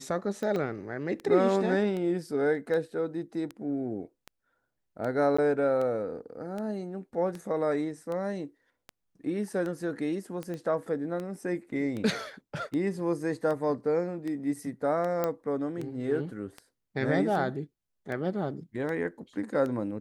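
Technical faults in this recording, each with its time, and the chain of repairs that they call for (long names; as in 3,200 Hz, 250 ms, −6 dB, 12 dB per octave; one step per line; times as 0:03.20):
scratch tick 78 rpm −24 dBFS
0:00.56: drop-out 2.7 ms
0:05.37–0:05.38: drop-out 15 ms
0:10.54: click −26 dBFS
0:15.24: click −15 dBFS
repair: click removal
repair the gap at 0:00.56, 2.7 ms
repair the gap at 0:05.37, 15 ms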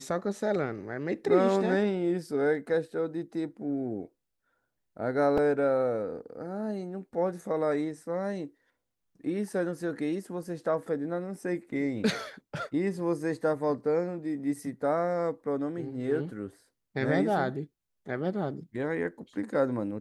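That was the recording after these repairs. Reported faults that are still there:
none of them is left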